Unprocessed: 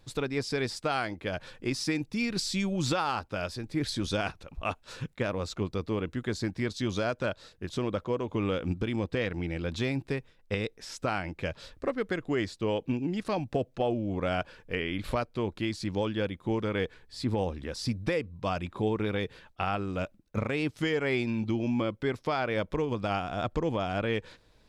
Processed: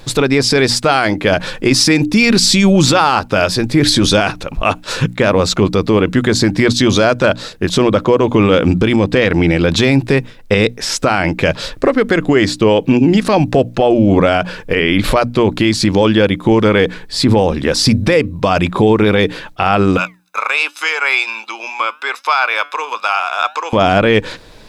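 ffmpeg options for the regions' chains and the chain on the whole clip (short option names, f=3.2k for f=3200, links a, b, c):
-filter_complex "[0:a]asettb=1/sr,asplit=3[a][b][c];[a]atrim=end=19.974[d];[b]atrim=start=19.97:end=23.73,asetpts=PTS-STARTPTS,afade=t=in:d=0.004:c=qsin,afade=t=out:st=3.756:d=0.004:c=qsin,highpass=f=700:w=0.5412,highpass=f=700:w=1.3066,aecho=1:1:0.8:0.57,atrim=end_sample=165816,flanger=delay=3.4:depth=3.5:regen=88:speed=1.3:shape=sinusoidal[e];[c]atrim=start=23.726[f];[d][e]acrossfade=d=0.004:c1=hsin:c2=qsin[g];[g][f]acrossfade=d=0.004:c1=qsin:c2=hsin,equalizer=f=66:w=1.7:g=-10.5,bandreject=f=60:t=h:w=6,bandreject=f=120:t=h:w=6,bandreject=f=180:t=h:w=6,bandreject=f=240:t=h:w=6,bandreject=f=300:t=h:w=6,alimiter=level_in=24.5dB:limit=-1dB:release=50:level=0:latency=1,volume=-1dB"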